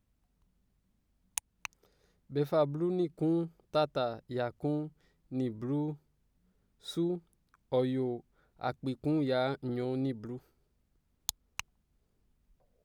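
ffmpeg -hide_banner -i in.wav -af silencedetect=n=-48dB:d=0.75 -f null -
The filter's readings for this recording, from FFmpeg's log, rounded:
silence_start: 0.00
silence_end: 1.37 | silence_duration: 1.37
silence_start: 5.95
silence_end: 6.84 | silence_duration: 0.89
silence_start: 10.38
silence_end: 11.29 | silence_duration: 0.91
silence_start: 11.60
silence_end: 12.84 | silence_duration: 1.24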